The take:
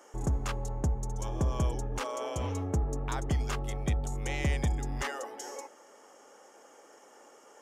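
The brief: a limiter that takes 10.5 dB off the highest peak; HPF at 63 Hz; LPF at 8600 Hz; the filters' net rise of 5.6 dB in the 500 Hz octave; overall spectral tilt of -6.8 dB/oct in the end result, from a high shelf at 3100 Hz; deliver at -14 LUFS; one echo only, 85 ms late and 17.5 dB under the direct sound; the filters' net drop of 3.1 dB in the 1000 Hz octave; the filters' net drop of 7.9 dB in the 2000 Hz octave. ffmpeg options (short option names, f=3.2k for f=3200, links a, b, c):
-af "highpass=63,lowpass=8.6k,equalizer=f=500:t=o:g=8.5,equalizer=f=1k:t=o:g=-5,equalizer=f=2k:t=o:g=-5.5,highshelf=f=3.1k:g=-9,alimiter=level_in=3dB:limit=-24dB:level=0:latency=1,volume=-3dB,aecho=1:1:85:0.133,volume=23dB"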